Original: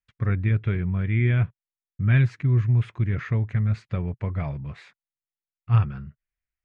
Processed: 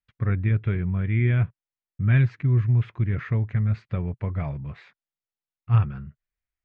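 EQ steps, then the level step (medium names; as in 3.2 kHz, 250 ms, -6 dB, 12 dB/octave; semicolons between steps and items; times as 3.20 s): distance through air 140 m; 0.0 dB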